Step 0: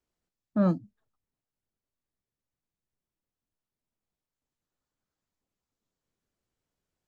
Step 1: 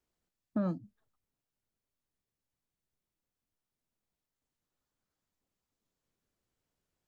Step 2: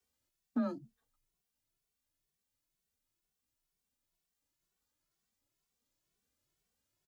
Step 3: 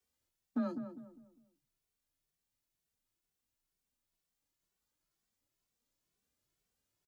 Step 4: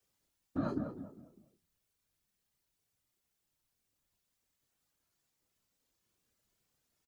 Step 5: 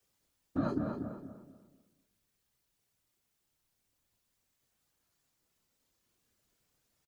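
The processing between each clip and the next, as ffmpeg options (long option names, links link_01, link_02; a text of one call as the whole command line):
ffmpeg -i in.wav -af "acompressor=threshold=-29dB:ratio=5" out.wav
ffmpeg -i in.wav -filter_complex "[0:a]highshelf=frequency=2200:gain=8.5,afreqshift=22,asplit=2[link_01][link_02];[link_02]adelay=2.2,afreqshift=2.1[link_03];[link_01][link_03]amix=inputs=2:normalize=1" out.wav
ffmpeg -i in.wav -filter_complex "[0:a]asplit=2[link_01][link_02];[link_02]adelay=201,lowpass=frequency=1100:poles=1,volume=-8dB,asplit=2[link_03][link_04];[link_04]adelay=201,lowpass=frequency=1100:poles=1,volume=0.36,asplit=2[link_05][link_06];[link_06]adelay=201,lowpass=frequency=1100:poles=1,volume=0.36,asplit=2[link_07][link_08];[link_08]adelay=201,lowpass=frequency=1100:poles=1,volume=0.36[link_09];[link_01][link_03][link_05][link_07][link_09]amix=inputs=5:normalize=0,volume=-1.5dB" out.wav
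ffmpeg -i in.wav -filter_complex "[0:a]alimiter=level_in=6dB:limit=-24dB:level=0:latency=1:release=142,volume=-6dB,afftfilt=real='hypot(re,im)*cos(2*PI*random(0))':imag='hypot(re,im)*sin(2*PI*random(1))':win_size=512:overlap=0.75,asplit=2[link_01][link_02];[link_02]adelay=30,volume=-11dB[link_03];[link_01][link_03]amix=inputs=2:normalize=0,volume=10dB" out.wav
ffmpeg -i in.wav -filter_complex "[0:a]asplit=2[link_01][link_02];[link_02]adelay=245,lowpass=frequency=3200:poles=1,volume=-6dB,asplit=2[link_03][link_04];[link_04]adelay=245,lowpass=frequency=3200:poles=1,volume=0.29,asplit=2[link_05][link_06];[link_06]adelay=245,lowpass=frequency=3200:poles=1,volume=0.29,asplit=2[link_07][link_08];[link_08]adelay=245,lowpass=frequency=3200:poles=1,volume=0.29[link_09];[link_01][link_03][link_05][link_07][link_09]amix=inputs=5:normalize=0,volume=2.5dB" out.wav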